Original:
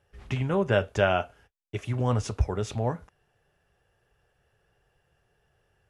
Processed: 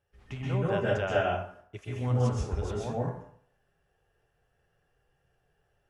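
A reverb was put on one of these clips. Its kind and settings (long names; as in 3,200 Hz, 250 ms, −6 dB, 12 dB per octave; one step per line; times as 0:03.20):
dense smooth reverb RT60 0.6 s, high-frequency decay 0.65×, pre-delay 115 ms, DRR −5 dB
level −10 dB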